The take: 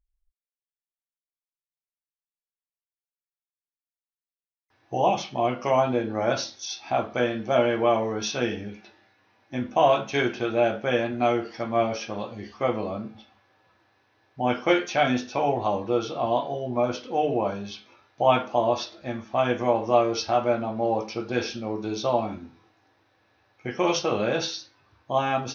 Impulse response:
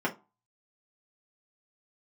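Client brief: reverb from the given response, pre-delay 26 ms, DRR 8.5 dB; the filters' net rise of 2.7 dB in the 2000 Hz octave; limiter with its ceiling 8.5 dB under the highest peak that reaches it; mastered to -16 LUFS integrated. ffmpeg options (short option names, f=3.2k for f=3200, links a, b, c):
-filter_complex "[0:a]equalizer=f=2k:t=o:g=3.5,alimiter=limit=-14.5dB:level=0:latency=1,asplit=2[a][b];[1:a]atrim=start_sample=2205,adelay=26[c];[b][c]afir=irnorm=-1:irlink=0,volume=-18dB[d];[a][d]amix=inputs=2:normalize=0,volume=11dB"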